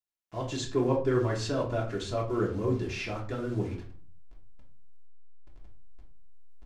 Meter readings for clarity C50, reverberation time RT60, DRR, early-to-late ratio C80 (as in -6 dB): 8.5 dB, 0.45 s, -3.0 dB, 13.0 dB